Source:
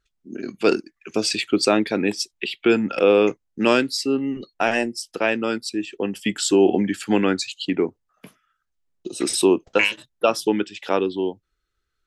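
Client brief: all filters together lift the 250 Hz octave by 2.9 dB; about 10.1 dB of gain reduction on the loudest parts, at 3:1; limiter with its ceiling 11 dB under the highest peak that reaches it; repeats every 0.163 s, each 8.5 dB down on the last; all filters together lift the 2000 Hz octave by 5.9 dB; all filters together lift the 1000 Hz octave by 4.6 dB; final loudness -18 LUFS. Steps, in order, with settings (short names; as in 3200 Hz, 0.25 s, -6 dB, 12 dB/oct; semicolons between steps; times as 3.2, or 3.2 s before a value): bell 250 Hz +3.5 dB; bell 1000 Hz +4 dB; bell 2000 Hz +7 dB; compressor 3:1, threshold -23 dBFS; limiter -17.5 dBFS; feedback echo 0.163 s, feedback 38%, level -8.5 dB; gain +10.5 dB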